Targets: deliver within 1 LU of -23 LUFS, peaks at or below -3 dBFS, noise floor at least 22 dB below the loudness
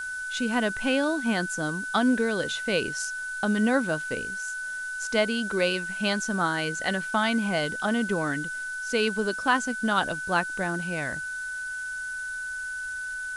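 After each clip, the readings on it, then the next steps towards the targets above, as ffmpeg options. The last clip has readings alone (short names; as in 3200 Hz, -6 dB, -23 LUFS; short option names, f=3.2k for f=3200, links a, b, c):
steady tone 1500 Hz; tone level -31 dBFS; noise floor -34 dBFS; noise floor target -49 dBFS; loudness -27.0 LUFS; peak -10.0 dBFS; loudness target -23.0 LUFS
-> -af "bandreject=f=1.5k:w=30"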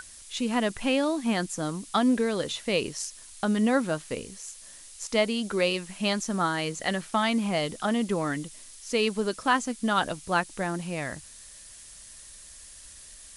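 steady tone none; noise floor -48 dBFS; noise floor target -50 dBFS
-> -af "afftdn=nr=6:nf=-48"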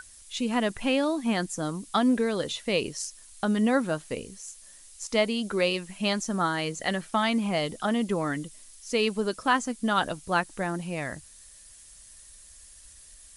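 noise floor -51 dBFS; loudness -28.0 LUFS; peak -10.5 dBFS; loudness target -23.0 LUFS
-> -af "volume=5dB"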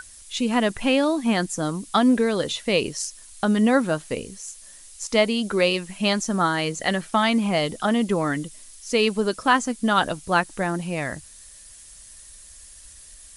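loudness -23.0 LUFS; peak -5.5 dBFS; noise floor -46 dBFS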